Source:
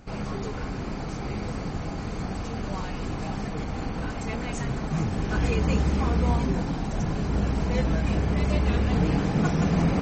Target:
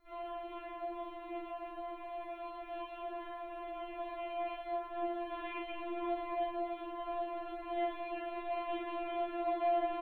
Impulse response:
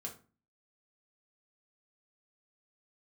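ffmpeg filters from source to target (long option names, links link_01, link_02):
-filter_complex "[0:a]bandreject=frequency=60:width_type=h:width=6,bandreject=frequency=120:width_type=h:width=6,bandreject=frequency=180:width_type=h:width=6,bandreject=frequency=240:width_type=h:width=6,bandreject=frequency=300:width_type=h:width=6,aresample=8000,aeval=exprs='sgn(val(0))*max(abs(val(0))-0.00224,0)':channel_layout=same,aresample=44100,acrusher=bits=11:mix=0:aa=0.000001,aecho=1:1:32|52:0.631|0.422[link_01];[1:a]atrim=start_sample=2205,asetrate=42336,aresample=44100[link_02];[link_01][link_02]afir=irnorm=-1:irlink=0,afftfilt=real='re*4*eq(mod(b,16),0)':imag='im*4*eq(mod(b,16),0)':win_size=2048:overlap=0.75,volume=-3.5dB"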